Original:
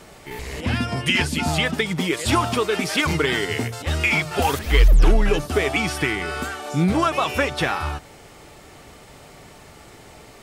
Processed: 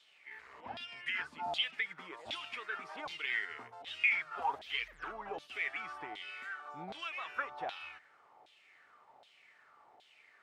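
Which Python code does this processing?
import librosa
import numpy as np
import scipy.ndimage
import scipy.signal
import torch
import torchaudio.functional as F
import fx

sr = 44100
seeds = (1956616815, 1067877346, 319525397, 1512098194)

y = fx.filter_lfo_bandpass(x, sr, shape='saw_down', hz=1.3, low_hz=710.0, high_hz=3600.0, q=4.9)
y = F.gain(torch.from_numpy(y), -6.0).numpy()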